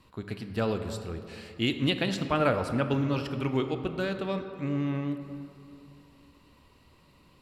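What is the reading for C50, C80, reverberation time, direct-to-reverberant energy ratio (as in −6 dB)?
8.5 dB, 9.0 dB, 2.8 s, 7.0 dB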